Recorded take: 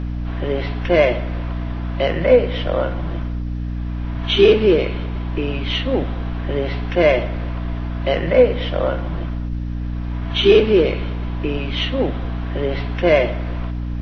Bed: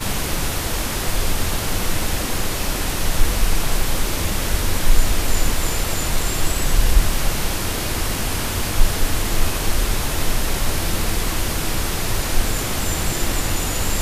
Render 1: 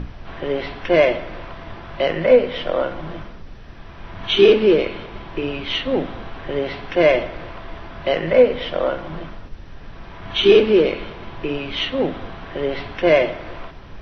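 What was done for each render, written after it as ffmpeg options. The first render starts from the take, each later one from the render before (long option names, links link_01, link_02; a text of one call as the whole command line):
ffmpeg -i in.wav -af "bandreject=frequency=60:width_type=h:width=6,bandreject=frequency=120:width_type=h:width=6,bandreject=frequency=180:width_type=h:width=6,bandreject=frequency=240:width_type=h:width=6,bandreject=frequency=300:width_type=h:width=6" out.wav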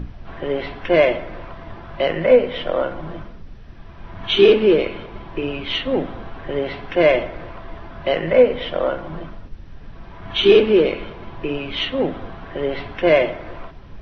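ffmpeg -i in.wav -af "afftdn=noise_reduction=6:noise_floor=-38" out.wav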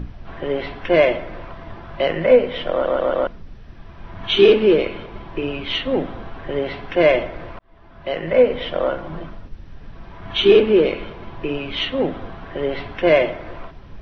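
ffmpeg -i in.wav -filter_complex "[0:a]asettb=1/sr,asplit=3[link_01][link_02][link_03];[link_01]atrim=end=10.434[link_04];[link_02]atrim=start=10.43:end=10.83,asetpts=PTS-STARTPTS,afade=type=in:duration=0.004:curve=qsin,afade=type=out:start_time=0.396:duration=0.004:curve=qsin,highshelf=frequency=4100:gain=-6.5[link_05];[link_03]atrim=start=10.826[link_06];[link_04][link_05]acrossfade=duration=0.004:curve1=hsin:curve2=qsin[link_07];[link_07][link_06]acrossfade=duration=0.004:curve1=qsin:curve2=hsin,asplit=6[link_08][link_09][link_10][link_11][link_12][link_13];[link_08]atrim=end=2.852[link_14];[link_09]atrim=start=2.708:end=2.852[link_15];[link_10]atrim=start=2.708:end=2.852[link_16];[link_11]atrim=start=2.708:end=2.852[link_17];[link_12]atrim=start=3.268:end=7.59,asetpts=PTS-STARTPTS,afade=type=out:start_time=4.318:duration=0.004:curve=hsin[link_18];[link_13]atrim=start=7.59,asetpts=PTS-STARTPTS,afade=type=in:duration=0.94[link_19];[link_14][link_15]acrossfade=duration=0.004:curve1=hsin:curve2=hsin[link_20];[link_20][link_16]acrossfade=duration=0.004:curve1=hsin:curve2=hsin[link_21];[link_21][link_17]acrossfade=duration=0.004:curve1=hsin:curve2=hsin[link_22];[link_18][link_19]concat=n=2:v=0:a=1[link_23];[link_22][link_23]acrossfade=duration=0.004:curve1=hsin:curve2=hsin" out.wav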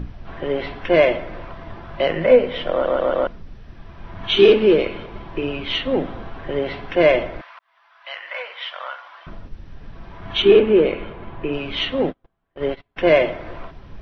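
ffmpeg -i in.wav -filter_complex "[0:a]asettb=1/sr,asplit=3[link_01][link_02][link_03];[link_01]atrim=end=7.414[link_04];[link_02]atrim=start=7.41:end=9.27,asetpts=PTS-STARTPTS,afade=type=in:duration=0.004:curve=qsin,afade=type=out:start_time=1.856:duration=0.004:curve=qsin,highpass=frequency=980:width=0.5412,highpass=frequency=980:width=1.3066[link_05];[link_03]atrim=start=9.266[link_06];[link_04][link_05]acrossfade=duration=0.004:curve1=hsin:curve2=qsin[link_07];[link_07][link_06]acrossfade=duration=0.004:curve1=qsin:curve2=hsin,asettb=1/sr,asplit=3[link_08][link_09][link_10];[link_08]atrim=end=10.424[link_11];[link_09]atrim=start=10.42:end=11.53,asetpts=PTS-STARTPTS,afade=type=in:duration=0.004:curve=qsin,afade=type=out:start_time=1.106:duration=0.004:curve=qsin,lowpass=2900[link_12];[link_10]atrim=start=11.526[link_13];[link_11][link_12]acrossfade=duration=0.004:curve1=hsin:curve2=qsin[link_14];[link_14][link_13]acrossfade=duration=0.004:curve1=qsin:curve2=hsin,asplit=3[link_15][link_16][link_17];[link_15]afade=type=out:start_time=12.08:duration=0.02[link_18];[link_16]agate=range=-40dB:threshold=-25dB:ratio=16:release=100:detection=peak,afade=type=in:start_time=12.08:duration=0.02,afade=type=out:start_time=12.96:duration=0.02[link_19];[link_17]afade=type=in:start_time=12.96:duration=0.02[link_20];[link_18][link_19][link_20]amix=inputs=3:normalize=0" out.wav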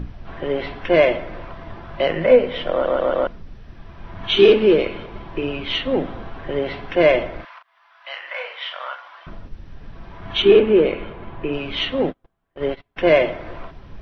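ffmpeg -i in.wav -filter_complex "[0:a]asettb=1/sr,asplit=3[link_01][link_02][link_03];[link_01]atrim=end=7.364[link_04];[link_02]atrim=start=7.36:end=8.95,asetpts=PTS-STARTPTS,afade=type=in:duration=0.004:curve=qsin,afade=type=out:start_time=1.586:duration=0.004:curve=qsin,asplit=2[link_05][link_06];[link_06]adelay=37,volume=-6.5dB[link_07];[link_05][link_07]amix=inputs=2:normalize=0,atrim=end_sample=70119[link_08];[link_03]atrim=start=8.946[link_09];[link_04][link_08]acrossfade=duration=0.004:curve1=hsin:curve2=qsin[link_10];[link_10][link_09]acrossfade=duration=0.004:curve1=qsin:curve2=hsin" out.wav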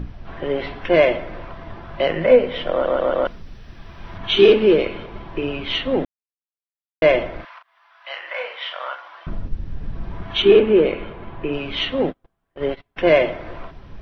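ffmpeg -i in.wav -filter_complex "[0:a]asettb=1/sr,asplit=3[link_01][link_02][link_03];[link_01]atrim=end=3.254[link_04];[link_02]atrim=start=3.25:end=4.18,asetpts=PTS-STARTPTS,afade=type=in:duration=0.004:curve=qsin,afade=type=out:start_time=0.926:duration=0.004:curve=qsin,highshelf=frequency=2300:gain=8.5[link_05];[link_03]atrim=start=4.176[link_06];[link_04][link_05]acrossfade=duration=0.004:curve1=hsin:curve2=qsin[link_07];[link_07][link_06]acrossfade=duration=0.004:curve1=qsin:curve2=hsin,asettb=1/sr,asplit=3[link_08][link_09][link_10];[link_08]atrim=end=8.104[link_11];[link_09]atrim=start=8.1:end=10.23,asetpts=PTS-STARTPTS,afade=type=in:duration=0.004:curve=qsin,afade=type=out:start_time=2.126:duration=0.004:curve=qsin,lowshelf=frequency=380:gain=10[link_12];[link_10]atrim=start=10.226[link_13];[link_11][link_12]acrossfade=duration=0.004:curve1=hsin:curve2=qsin[link_14];[link_14][link_13]acrossfade=duration=0.004:curve1=qsin:curve2=hsin,asplit=3[link_15][link_16][link_17];[link_15]atrim=end=6.05,asetpts=PTS-STARTPTS,afade=type=out:start_time=6.046:duration=0.004:curve=hsin[link_18];[link_16]atrim=start=6.05:end=7.02,asetpts=PTS-STARTPTS,volume=0[link_19];[link_17]atrim=start=7.02,asetpts=PTS-STARTPTS,afade=type=in:duration=0.004:curve=hsin[link_20];[link_18][link_19][link_20]concat=n=3:v=0:a=1" out.wav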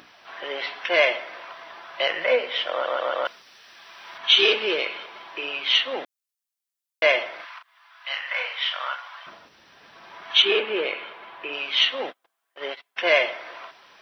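ffmpeg -i in.wav -af "highpass=850,highshelf=frequency=3200:gain=10" out.wav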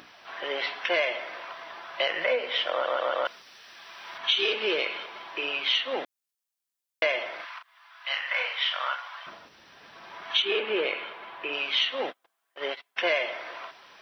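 ffmpeg -i in.wav -af "acompressor=threshold=-22dB:ratio=6" out.wav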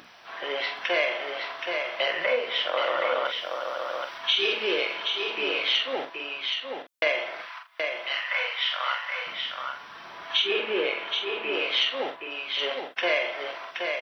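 ffmpeg -i in.wav -filter_complex "[0:a]asplit=2[link_01][link_02];[link_02]adelay=45,volume=-6.5dB[link_03];[link_01][link_03]amix=inputs=2:normalize=0,asplit=2[link_04][link_05];[link_05]aecho=0:1:774:0.562[link_06];[link_04][link_06]amix=inputs=2:normalize=0" out.wav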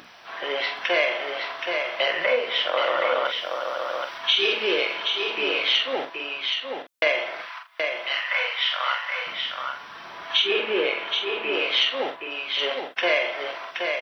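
ffmpeg -i in.wav -af "volume=3dB" out.wav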